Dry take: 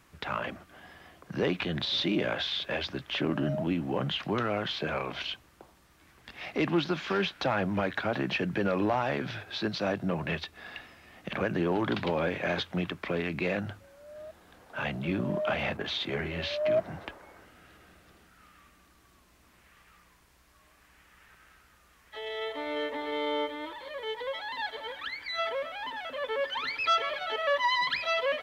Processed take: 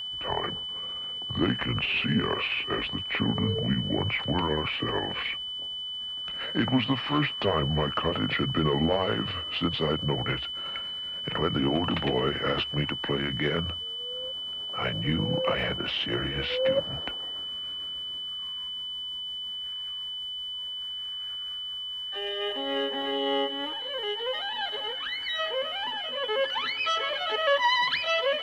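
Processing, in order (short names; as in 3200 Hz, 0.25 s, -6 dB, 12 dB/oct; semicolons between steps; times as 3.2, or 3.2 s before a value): gliding pitch shift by -6.5 st ending unshifted; whine 3000 Hz -36 dBFS; gain +3.5 dB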